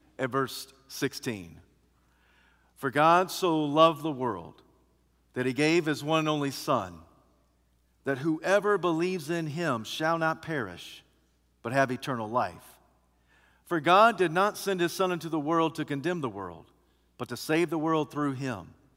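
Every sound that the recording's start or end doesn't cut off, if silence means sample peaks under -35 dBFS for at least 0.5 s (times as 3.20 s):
2.83–4.48 s
5.36–6.89 s
8.06–10.91 s
11.65–12.50 s
13.71–16.56 s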